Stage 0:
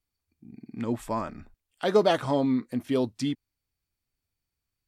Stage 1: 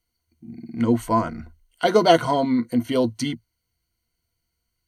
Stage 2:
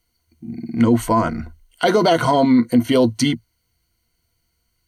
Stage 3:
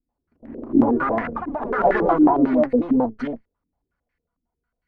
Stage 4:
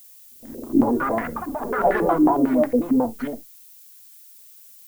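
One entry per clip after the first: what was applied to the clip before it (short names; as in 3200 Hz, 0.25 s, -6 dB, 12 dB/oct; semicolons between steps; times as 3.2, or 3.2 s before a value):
ripple EQ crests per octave 1.9, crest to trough 13 dB; gain +5.5 dB
limiter -14.5 dBFS, peak gain reduction 12 dB; gain +8 dB
minimum comb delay 4.1 ms; echoes that change speed 87 ms, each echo +3 st, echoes 3; stepped low-pass 11 Hz 290–1900 Hz; gain -8.5 dB
added noise violet -46 dBFS; on a send at -16 dB: reverb, pre-delay 12 ms; on the sum: gain -1.5 dB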